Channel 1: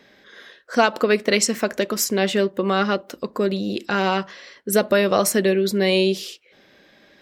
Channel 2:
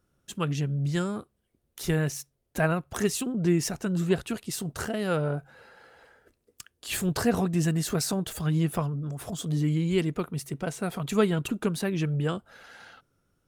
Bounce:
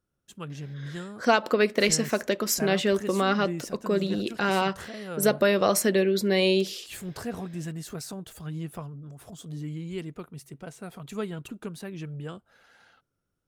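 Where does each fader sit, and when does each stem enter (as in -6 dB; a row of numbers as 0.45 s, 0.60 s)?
-4.0 dB, -9.5 dB; 0.50 s, 0.00 s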